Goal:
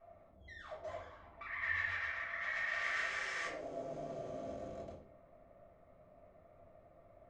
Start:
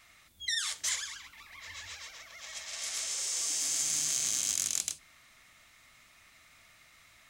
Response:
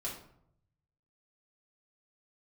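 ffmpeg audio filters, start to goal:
-filter_complex "[0:a]asetnsamples=n=441:p=0,asendcmd='1.41 lowpass f 1800;3.47 lowpass f 580',lowpass=f=640:t=q:w=4.5[s0];[1:a]atrim=start_sample=2205,afade=t=out:st=0.32:d=0.01,atrim=end_sample=14553[s1];[s0][s1]afir=irnorm=-1:irlink=0,volume=1.19"

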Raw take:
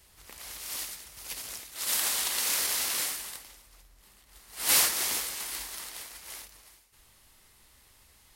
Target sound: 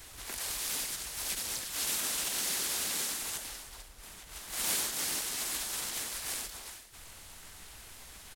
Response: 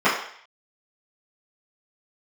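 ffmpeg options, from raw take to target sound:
-filter_complex "[0:a]asplit=4[s0][s1][s2][s3];[s1]asetrate=33038,aresample=44100,atempo=1.33484,volume=0.891[s4];[s2]asetrate=37084,aresample=44100,atempo=1.18921,volume=0.794[s5];[s3]asetrate=55563,aresample=44100,atempo=0.793701,volume=0.316[s6];[s0][s4][s5][s6]amix=inputs=4:normalize=0,acrossover=split=400|4100[s7][s8][s9];[s7]acompressor=threshold=0.00158:ratio=4[s10];[s8]acompressor=threshold=0.00355:ratio=4[s11];[s9]acompressor=threshold=0.00891:ratio=4[s12];[s10][s11][s12]amix=inputs=3:normalize=0,volume=2"

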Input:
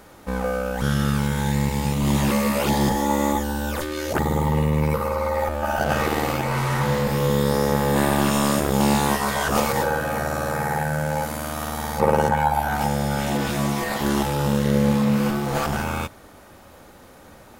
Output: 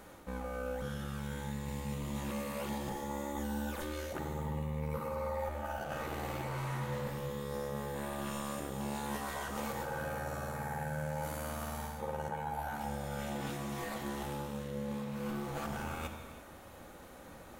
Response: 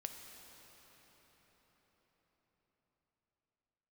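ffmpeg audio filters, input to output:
-filter_complex "[0:a]equalizer=f=5000:w=4.9:g=-5,areverse,acompressor=threshold=0.0282:ratio=6,areverse[s0];[1:a]atrim=start_sample=2205,afade=t=out:st=0.4:d=0.01,atrim=end_sample=18081[s1];[s0][s1]afir=irnorm=-1:irlink=0,volume=0.794"

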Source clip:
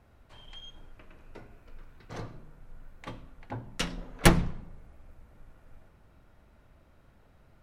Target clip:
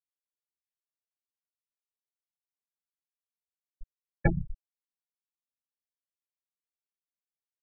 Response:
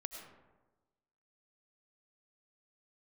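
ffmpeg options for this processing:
-filter_complex "[0:a]asplit=2[s0][s1];[1:a]atrim=start_sample=2205,adelay=95[s2];[s1][s2]afir=irnorm=-1:irlink=0,volume=0.335[s3];[s0][s3]amix=inputs=2:normalize=0,afftfilt=real='re*gte(hypot(re,im),0.316)':imag='im*gte(hypot(re,im),0.316)':win_size=1024:overlap=0.75,acompressor=threshold=0.0398:ratio=6,volume=2.11"

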